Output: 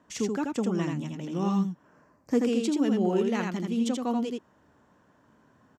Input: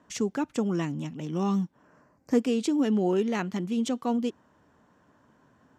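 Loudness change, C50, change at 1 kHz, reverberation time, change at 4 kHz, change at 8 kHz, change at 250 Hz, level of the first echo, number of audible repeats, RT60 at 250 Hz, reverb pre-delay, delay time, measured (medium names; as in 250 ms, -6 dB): 0.0 dB, no reverb, 0.0 dB, no reverb, 0.0 dB, 0.0 dB, 0.0 dB, -3.5 dB, 1, no reverb, no reverb, 82 ms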